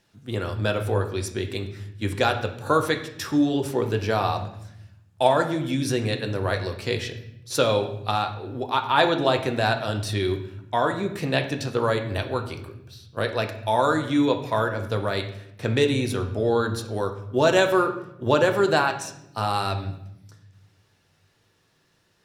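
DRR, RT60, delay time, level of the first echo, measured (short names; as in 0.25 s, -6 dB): 5.0 dB, 0.80 s, none, none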